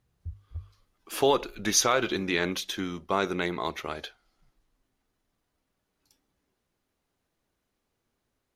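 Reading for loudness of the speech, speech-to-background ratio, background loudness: -27.5 LUFS, 16.5 dB, -44.0 LUFS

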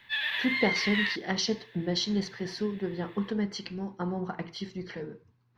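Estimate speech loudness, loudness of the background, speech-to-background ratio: -32.0 LUFS, -29.5 LUFS, -2.5 dB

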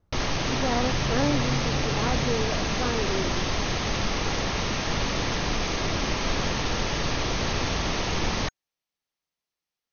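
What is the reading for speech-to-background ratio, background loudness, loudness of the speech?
-3.0 dB, -27.0 LUFS, -30.0 LUFS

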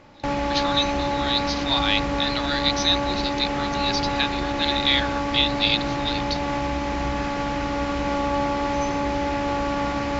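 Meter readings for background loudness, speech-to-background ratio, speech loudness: -25.0 LUFS, 0.5 dB, -24.5 LUFS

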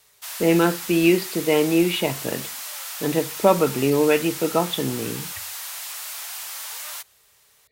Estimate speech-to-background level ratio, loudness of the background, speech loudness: 9.5 dB, -31.0 LUFS, -21.5 LUFS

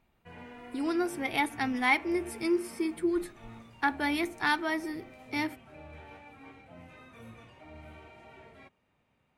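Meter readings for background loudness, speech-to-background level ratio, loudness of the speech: -49.5 LUFS, 19.0 dB, -30.5 LUFS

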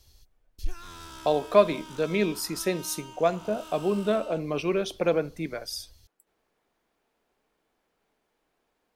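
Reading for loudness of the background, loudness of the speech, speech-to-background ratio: -44.5 LUFS, -27.5 LUFS, 17.0 dB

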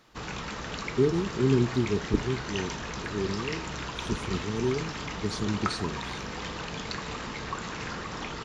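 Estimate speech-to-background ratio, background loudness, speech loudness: 5.0 dB, -35.5 LUFS, -30.5 LUFS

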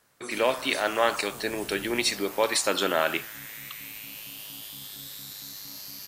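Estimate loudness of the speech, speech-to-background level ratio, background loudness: -26.5 LUFS, 12.5 dB, -39.0 LUFS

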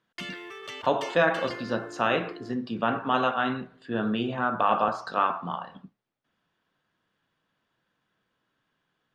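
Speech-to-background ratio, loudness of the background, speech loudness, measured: 13.0 dB, -40.5 LUFS, -27.5 LUFS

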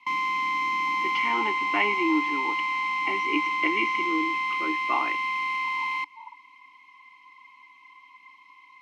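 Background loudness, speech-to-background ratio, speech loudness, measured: -26.0 LUFS, -4.0 dB, -30.0 LUFS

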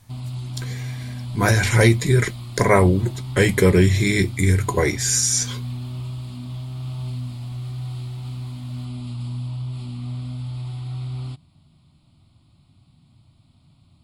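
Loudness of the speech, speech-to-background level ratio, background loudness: -18.5 LUFS, 13.0 dB, -31.5 LUFS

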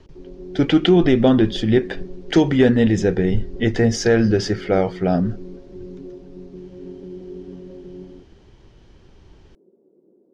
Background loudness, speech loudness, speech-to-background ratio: -37.5 LUFS, -18.0 LUFS, 19.5 dB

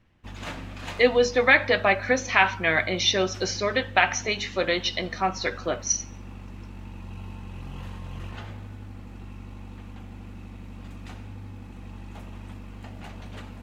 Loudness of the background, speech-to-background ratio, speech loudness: -41.0 LUFS, 18.0 dB, -23.0 LUFS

